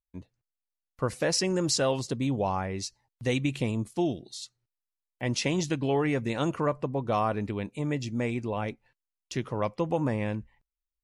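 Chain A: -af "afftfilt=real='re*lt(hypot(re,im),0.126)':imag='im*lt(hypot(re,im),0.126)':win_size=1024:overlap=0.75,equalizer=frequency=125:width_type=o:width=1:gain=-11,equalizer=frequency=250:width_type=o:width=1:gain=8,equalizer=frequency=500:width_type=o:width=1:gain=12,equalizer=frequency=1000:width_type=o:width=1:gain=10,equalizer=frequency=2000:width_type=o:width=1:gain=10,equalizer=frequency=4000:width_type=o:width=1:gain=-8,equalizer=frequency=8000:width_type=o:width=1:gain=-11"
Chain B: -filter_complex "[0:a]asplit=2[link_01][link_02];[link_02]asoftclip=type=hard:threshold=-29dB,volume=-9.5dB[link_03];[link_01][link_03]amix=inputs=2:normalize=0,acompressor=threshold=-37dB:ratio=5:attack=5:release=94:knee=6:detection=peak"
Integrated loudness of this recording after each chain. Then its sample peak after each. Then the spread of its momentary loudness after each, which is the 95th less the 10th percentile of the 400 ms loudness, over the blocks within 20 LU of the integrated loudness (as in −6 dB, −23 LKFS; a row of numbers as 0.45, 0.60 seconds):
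−28.5, −39.5 LKFS; −9.5, −27.0 dBFS; 9, 7 LU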